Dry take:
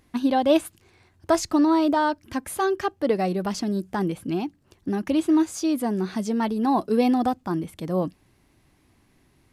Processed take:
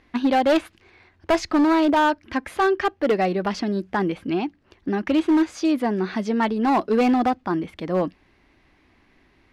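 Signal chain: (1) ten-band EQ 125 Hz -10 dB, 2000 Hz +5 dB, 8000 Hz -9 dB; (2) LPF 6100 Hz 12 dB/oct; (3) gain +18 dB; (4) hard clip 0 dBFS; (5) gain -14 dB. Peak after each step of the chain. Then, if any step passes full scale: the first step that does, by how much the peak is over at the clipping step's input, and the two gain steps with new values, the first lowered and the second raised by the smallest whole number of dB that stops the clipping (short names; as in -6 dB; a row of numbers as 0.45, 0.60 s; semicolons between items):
-8.5, -8.5, +9.5, 0.0, -14.0 dBFS; step 3, 9.5 dB; step 3 +8 dB, step 5 -4 dB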